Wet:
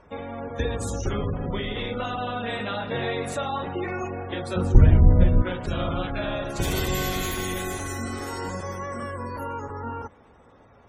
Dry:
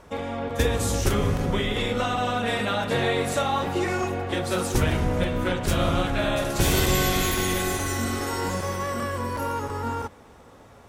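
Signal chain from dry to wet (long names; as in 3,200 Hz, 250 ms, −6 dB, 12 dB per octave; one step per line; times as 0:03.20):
gate on every frequency bin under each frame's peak −25 dB strong
0:04.56–0:05.42: RIAA equalisation playback
level −4 dB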